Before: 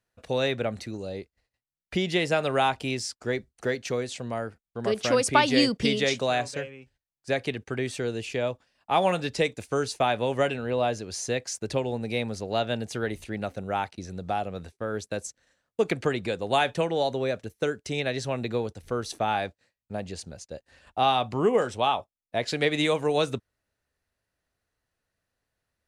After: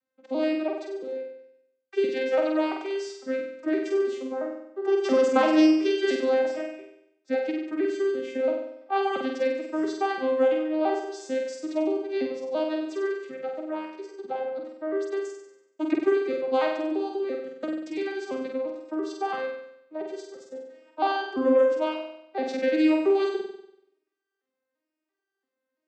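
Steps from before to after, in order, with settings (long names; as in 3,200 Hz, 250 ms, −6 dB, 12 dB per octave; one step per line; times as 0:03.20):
vocoder with an arpeggio as carrier minor triad, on C4, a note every 339 ms
0:16.75–0:19.07: downward compressor, threshold −27 dBFS, peak gain reduction 6.5 dB
flutter between parallel walls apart 8.2 metres, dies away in 0.77 s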